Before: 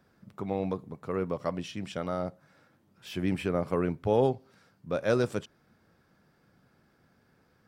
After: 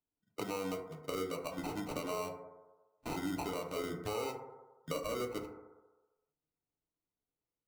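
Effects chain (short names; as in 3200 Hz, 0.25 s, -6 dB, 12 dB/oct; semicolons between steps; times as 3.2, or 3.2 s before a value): per-bin expansion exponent 1.5; spectral noise reduction 8 dB; gate -55 dBFS, range -24 dB; tone controls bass -10 dB, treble -3 dB; compressor, threshold -35 dBFS, peak gain reduction 12.5 dB; limiter -32.5 dBFS, peak gain reduction 8.5 dB; sample-rate reducer 1700 Hz, jitter 0%; FDN reverb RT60 0.82 s, low-frequency decay 0.75×, high-frequency decay 0.3×, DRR 1.5 dB; three-band squash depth 70%; gain +2.5 dB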